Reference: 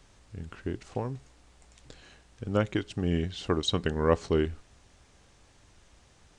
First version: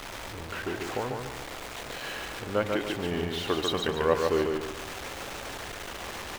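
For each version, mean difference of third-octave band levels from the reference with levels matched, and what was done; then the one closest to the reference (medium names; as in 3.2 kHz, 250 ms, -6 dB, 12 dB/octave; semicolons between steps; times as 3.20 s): 13.0 dB: jump at every zero crossing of -29 dBFS; tone controls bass -12 dB, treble -9 dB; feedback delay 144 ms, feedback 37%, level -4 dB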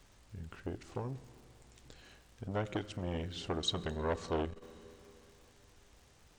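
5.0 dB: crackle 170 per s -50 dBFS; Schroeder reverb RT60 3.2 s, combs from 27 ms, DRR 17 dB; transformer saturation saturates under 1.5 kHz; trim -4 dB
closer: second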